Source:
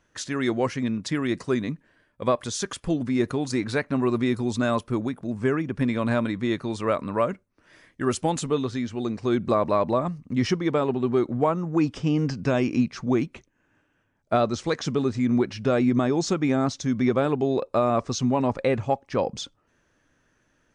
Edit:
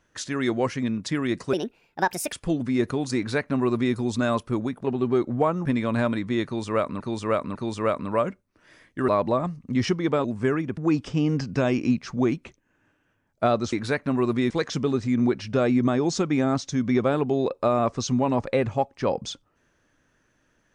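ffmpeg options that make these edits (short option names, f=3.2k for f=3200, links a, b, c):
-filter_complex "[0:a]asplit=12[a][b][c][d][e][f][g][h][i][j][k][l];[a]atrim=end=1.534[m];[b]atrim=start=1.53:end=2.73,asetpts=PTS-STARTPTS,asetrate=66591,aresample=44100,atrim=end_sample=35046,asetpts=PTS-STARTPTS[n];[c]atrim=start=2.726:end=5.252[o];[d]atrim=start=10.858:end=11.672[p];[e]atrim=start=5.778:end=7.132[q];[f]atrim=start=6.578:end=7.132[r];[g]atrim=start=6.578:end=8.112[s];[h]atrim=start=9.698:end=10.862[t];[i]atrim=start=5.248:end=5.782[u];[j]atrim=start=11.668:end=14.622[v];[k]atrim=start=3.568:end=4.352[w];[l]atrim=start=14.618[x];[m][n]acrossfade=d=0.004:c1=hsin:c2=hsin[y];[y][o]acrossfade=d=0.004:c1=hsin:c2=hsin[z];[z][p]acrossfade=d=0.004:c1=hsin:c2=hsin[aa];[aa][q]acrossfade=d=0.004:c1=hsin:c2=hsin[ab];[ab][r]acrossfade=d=0.004:c1=hsin:c2=hsin[ac];[ac][s]acrossfade=d=0.004:c1=hsin:c2=hsin[ad];[ad][t]acrossfade=d=0.004:c1=hsin:c2=hsin[ae];[ae][u]acrossfade=d=0.004:c1=hsin:c2=hsin[af];[af][v]acrossfade=d=0.004:c1=hsin:c2=hsin[ag];[ag][w]acrossfade=d=0.004:c1=hsin:c2=hsin[ah];[ah][x]acrossfade=d=0.004:c1=hsin:c2=hsin"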